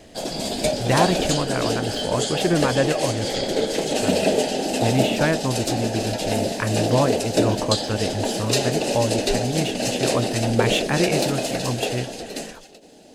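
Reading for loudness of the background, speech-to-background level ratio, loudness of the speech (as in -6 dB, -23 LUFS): -23.5 LUFS, -1.5 dB, -25.0 LUFS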